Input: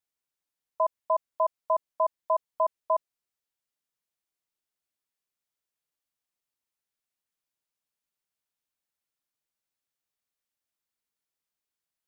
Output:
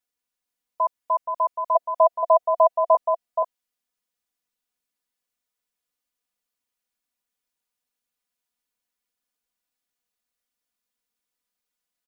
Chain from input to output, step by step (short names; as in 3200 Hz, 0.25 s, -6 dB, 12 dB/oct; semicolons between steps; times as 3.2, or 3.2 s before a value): 1.75–2.95 bell 670 Hz +13.5 dB 0.53 oct; comb 4.1 ms, depth 96%; echo 0.475 s -6 dB